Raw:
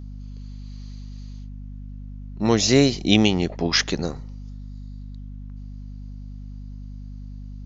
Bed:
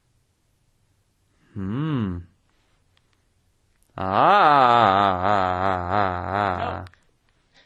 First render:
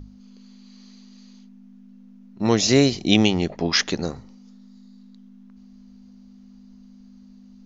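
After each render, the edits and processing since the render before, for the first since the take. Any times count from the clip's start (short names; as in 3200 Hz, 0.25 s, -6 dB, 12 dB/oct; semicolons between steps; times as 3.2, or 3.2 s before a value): notches 50/100/150 Hz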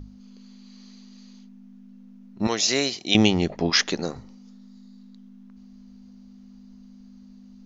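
2.47–3.15 HPF 970 Hz 6 dB/oct; 3.7–4.16 bell 68 Hz -14 dB 1.7 oct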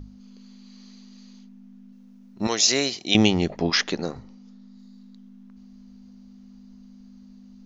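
1.92–2.72 tone controls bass -3 dB, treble +5 dB; 3.75–4.79 air absorption 70 m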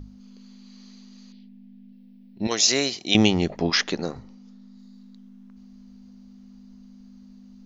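1.32–2.51 fixed phaser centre 2900 Hz, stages 4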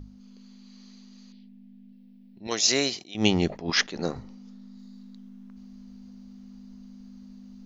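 vocal rider 0.5 s; attack slew limiter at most 170 dB/s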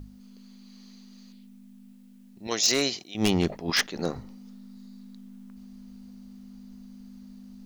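requantised 12-bit, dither triangular; wavefolder -14 dBFS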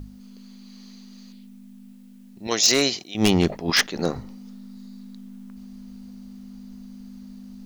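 gain +5 dB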